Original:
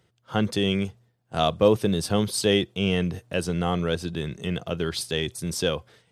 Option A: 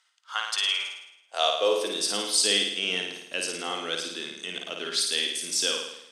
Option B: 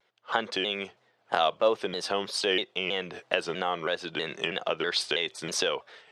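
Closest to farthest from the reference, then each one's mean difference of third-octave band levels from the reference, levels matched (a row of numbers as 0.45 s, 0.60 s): B, A; 8.0 dB, 12.0 dB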